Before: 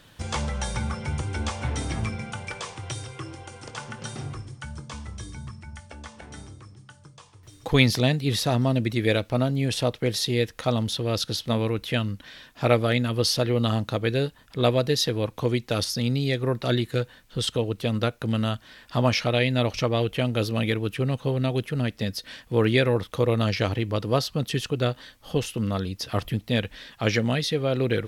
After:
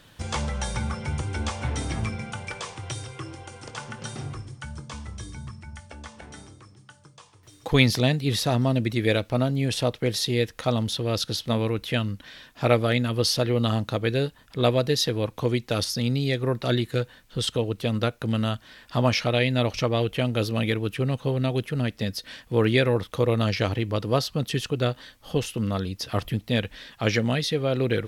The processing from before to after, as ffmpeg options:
-filter_complex "[0:a]asettb=1/sr,asplit=3[s0][s1][s2];[s0]atrim=end=6.314[s3];[s1]atrim=start=6.31:end=7.72,asetpts=PTS-STARTPTS,afade=t=in:d=0.004:c=qsin,afade=t=out:st=1.406:d=0.004:c=qsin,lowshelf=f=110:g=-10[s4];[s2]atrim=start=7.716[s5];[s3][s4]acrossfade=d=0.004:c1=hsin:c2=qsin[s6];[s6][s5]acrossfade=d=0.004:c1=qsin:c2=hsin"

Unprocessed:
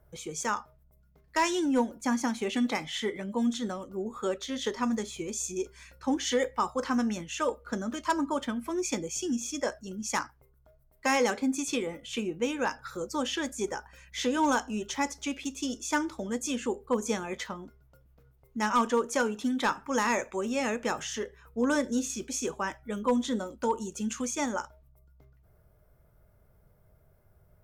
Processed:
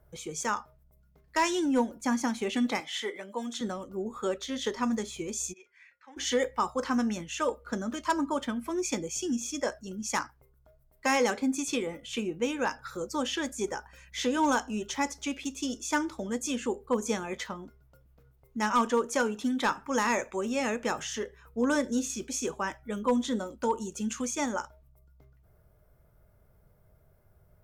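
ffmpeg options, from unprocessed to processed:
-filter_complex "[0:a]asettb=1/sr,asplit=3[s0][s1][s2];[s0]atrim=end=2.804[s3];[s1]atrim=start=2.8:end=3.61,asetpts=PTS-STARTPTS,afade=t=in:d=0.004:c=qsin,afade=t=out:st=0.806:d=0.004:c=qsin,highpass=420[s4];[s2]atrim=start=3.606[s5];[s3][s4]acrossfade=d=0.004:c1=hsin:c2=qsin[s6];[s6][s5]acrossfade=d=0.004:c1=qsin:c2=hsin,asplit=3[s7][s8][s9];[s7]afade=t=out:st=5.52:d=0.02[s10];[s8]bandpass=f=2000:t=q:w=4,afade=t=in:st=5.52:d=0.02,afade=t=out:st=6.16:d=0.02[s11];[s9]afade=t=in:st=6.16:d=0.02[s12];[s10][s11][s12]amix=inputs=3:normalize=0"

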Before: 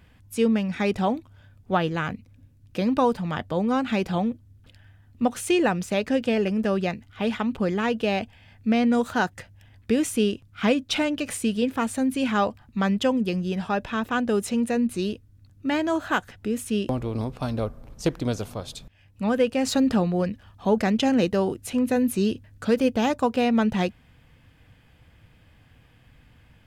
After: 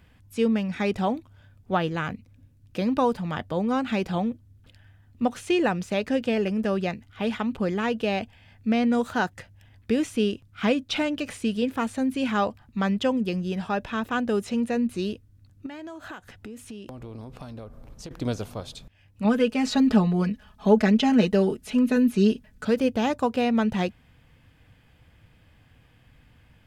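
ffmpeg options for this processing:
-filter_complex "[0:a]asettb=1/sr,asplit=3[s0][s1][s2];[s0]atrim=end=15.664[s3];[s1]atrim=start=15.66:end=18.11,asetpts=PTS-STARTPTS,afade=t=in:d=0.004:c=qsin,afade=t=out:st=2.446:d=0.004:c=qsin,acompressor=threshold=0.02:ratio=10:attack=3.2:release=140:knee=1:detection=peak[s4];[s2]atrim=start=18.106[s5];[s3][s4]acrossfade=d=0.004:c1=hsin:c2=qsin[s6];[s6][s5]acrossfade=d=0.004:c1=qsin:c2=hsin,asettb=1/sr,asplit=3[s7][s8][s9];[s7]atrim=end=19.244[s10];[s8]atrim=start=19.24:end=22.65,asetpts=PTS-STARTPTS,afade=t=in:d=0.004:c=qsin,afade=t=out:st=3.406:d=0.004:c=qsin,aecho=1:1:4.7:0.86,atrim=end_sample=150381[s11];[s9]atrim=start=22.646[s12];[s10][s11]acrossfade=d=0.004:c1=hsin:c2=qsin[s13];[s13][s12]acrossfade=d=0.004:c1=qsin:c2=hsin,acrossover=split=5900[s14][s15];[s15]acompressor=threshold=0.00501:ratio=4:attack=1:release=60[s16];[s14][s16]amix=inputs=2:normalize=0,volume=0.841"

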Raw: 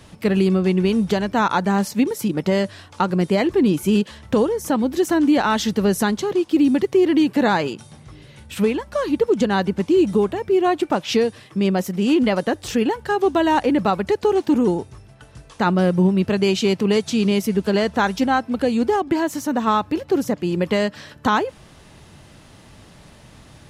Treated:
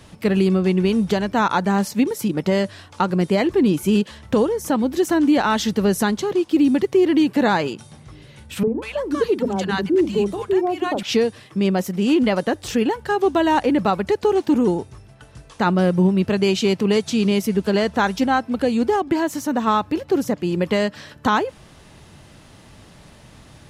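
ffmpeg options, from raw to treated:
-filter_complex "[0:a]asettb=1/sr,asplit=3[s0][s1][s2];[s0]atrim=end=8.634[s3];[s1]atrim=start=8.63:end=11.03,asetpts=PTS-STARTPTS,afade=t=in:d=0.004:c=qsin,afade=t=out:st=2.396:d=0.004:c=qsin,acrossover=split=240|820[s4][s5][s6];[s4]adelay=40[s7];[s6]adelay=190[s8];[s7][s5][s8]amix=inputs=3:normalize=0,atrim=end_sample=105840[s9];[s2]atrim=start=11.026[s10];[s3][s9]acrossfade=d=0.004:c1=hsin:c2=qsin[s11];[s11][s10]acrossfade=d=0.004:c1=qsin:c2=hsin"

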